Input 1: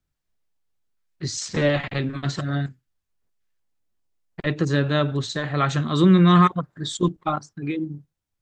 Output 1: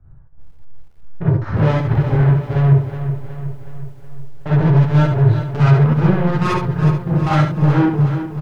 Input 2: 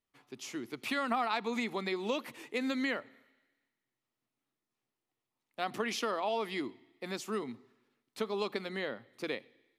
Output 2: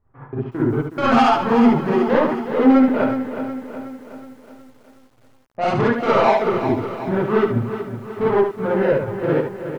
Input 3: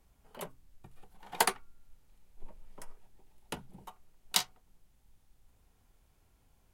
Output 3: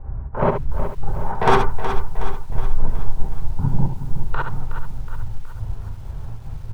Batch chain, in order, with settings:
LPF 1300 Hz 24 dB/oct; resonant low shelf 150 Hz +10.5 dB, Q 1.5; in parallel at 0 dB: negative-ratio compressor -28 dBFS, ratio -1; on the sum: limiter -15.5 dBFS; step gate "xx.x.xx..xxx.x" 138 bpm -60 dB; soft clip -30 dBFS; on a send: echo 72 ms -7 dB; on the sum: non-linear reverb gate 80 ms rising, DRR -7 dB; lo-fi delay 0.369 s, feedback 55%, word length 10-bit, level -10 dB; normalise peaks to -2 dBFS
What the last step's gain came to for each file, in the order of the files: +8.0, +11.0, +15.0 dB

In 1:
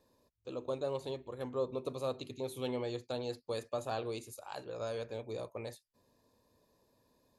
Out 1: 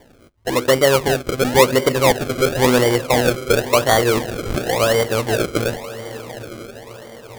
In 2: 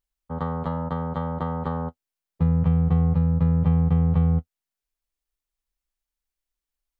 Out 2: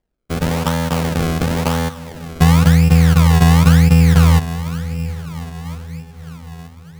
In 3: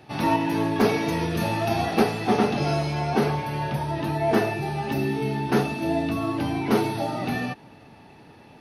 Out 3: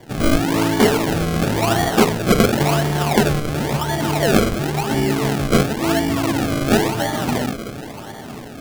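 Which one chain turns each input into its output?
diffused feedback echo 0.923 s, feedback 50%, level -14 dB; decimation with a swept rate 33×, swing 100% 0.95 Hz; normalise peaks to -1.5 dBFS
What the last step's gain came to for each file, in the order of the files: +22.0, +9.5, +6.5 dB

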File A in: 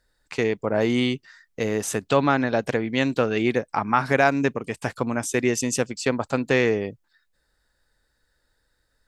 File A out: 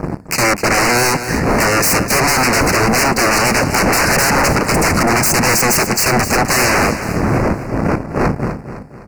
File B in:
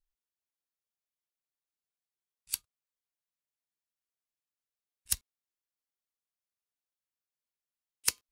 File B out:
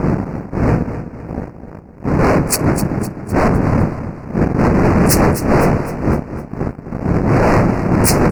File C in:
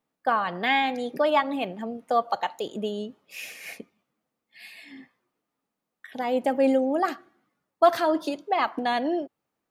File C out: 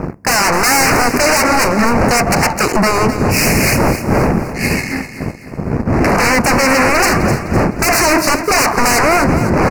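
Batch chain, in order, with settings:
wind noise 190 Hz -34 dBFS; HPF 140 Hz 6 dB/oct; sample leveller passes 3; in parallel at -1 dB: compressor, threshold -21 dBFS; on the sum: wavefolder -18.5 dBFS; Chebyshev band-stop 2400–4800 Hz, order 2; vibrato 7 Hz 28 cents; on a send: feedback echo 0.255 s, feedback 45%, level -11 dB; on the sum: normalise peaks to -1.5 dBFS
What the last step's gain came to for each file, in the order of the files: +12.0, +13.5, +13.0 dB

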